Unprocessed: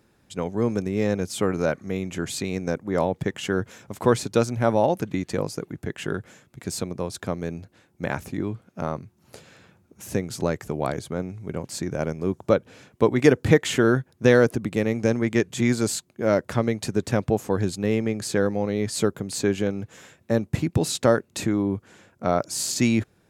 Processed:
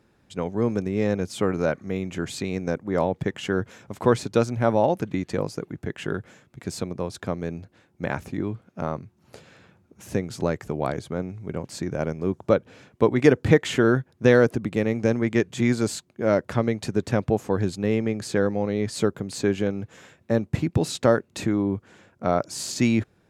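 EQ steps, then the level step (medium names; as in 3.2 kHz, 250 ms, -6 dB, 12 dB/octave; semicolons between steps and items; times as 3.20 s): treble shelf 6.7 kHz -9.5 dB; 0.0 dB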